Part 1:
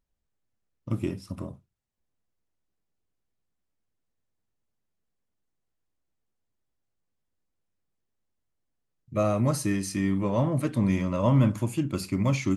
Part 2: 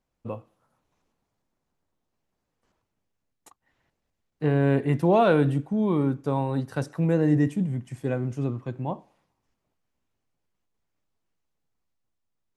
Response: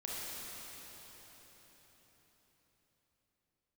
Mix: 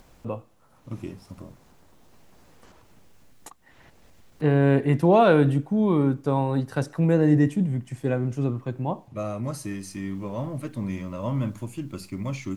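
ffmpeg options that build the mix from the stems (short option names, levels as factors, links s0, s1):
-filter_complex "[0:a]acompressor=mode=upward:threshold=0.0158:ratio=2.5,volume=0.501[s0];[1:a]acompressor=mode=upward:threshold=0.0112:ratio=2.5,volume=1.33[s1];[s0][s1]amix=inputs=2:normalize=0"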